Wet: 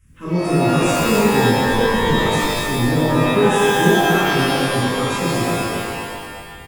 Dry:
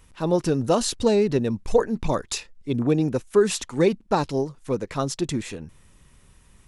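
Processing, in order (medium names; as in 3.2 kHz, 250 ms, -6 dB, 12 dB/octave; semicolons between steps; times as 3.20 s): coarse spectral quantiser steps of 30 dB; static phaser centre 1.8 kHz, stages 4; on a send: feedback delay 241 ms, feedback 39%, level -5 dB; on the sum: pitch-shifted reverb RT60 1.6 s, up +12 st, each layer -2 dB, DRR -9.5 dB; trim -4.5 dB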